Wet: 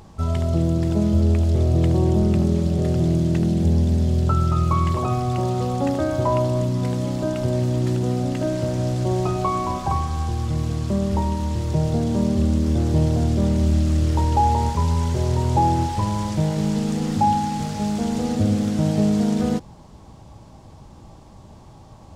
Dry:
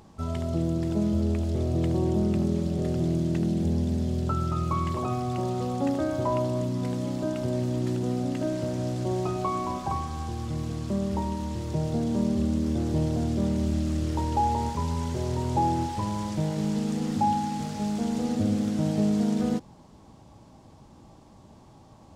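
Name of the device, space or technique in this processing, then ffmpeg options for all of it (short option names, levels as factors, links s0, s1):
low shelf boost with a cut just above: -af "lowshelf=f=93:g=7.5,equalizer=f=260:t=o:w=0.82:g=-4,volume=2"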